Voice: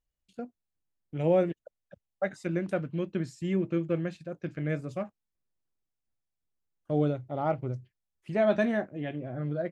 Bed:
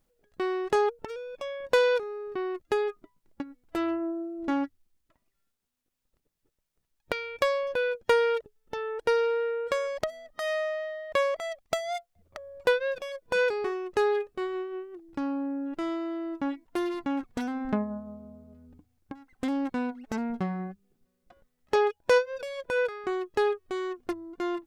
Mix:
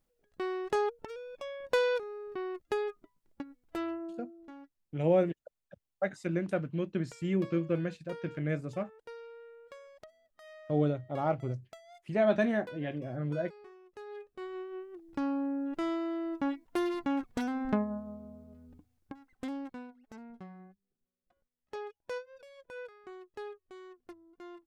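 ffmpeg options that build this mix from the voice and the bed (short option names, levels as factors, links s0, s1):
-filter_complex "[0:a]adelay=3800,volume=0.841[s0];[1:a]volume=5.96,afade=t=out:st=3.71:d=0.81:silence=0.141254,afade=t=in:st=14.06:d=1.17:silence=0.0891251,afade=t=out:st=18.7:d=1.18:silence=0.158489[s1];[s0][s1]amix=inputs=2:normalize=0"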